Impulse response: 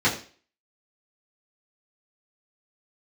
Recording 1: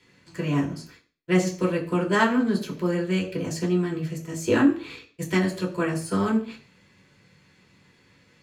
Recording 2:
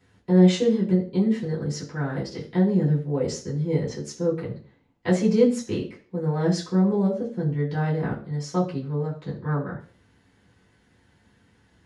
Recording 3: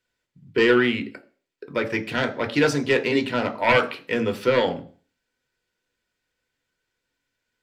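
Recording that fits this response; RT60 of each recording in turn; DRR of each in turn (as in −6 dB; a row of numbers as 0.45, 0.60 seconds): 2; 0.40, 0.40, 0.40 seconds; −3.0, −9.0, 6.0 decibels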